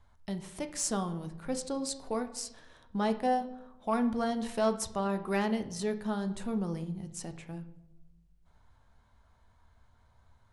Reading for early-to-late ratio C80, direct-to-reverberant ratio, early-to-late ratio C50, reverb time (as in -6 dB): 15.5 dB, 7.5 dB, 13.0 dB, 0.90 s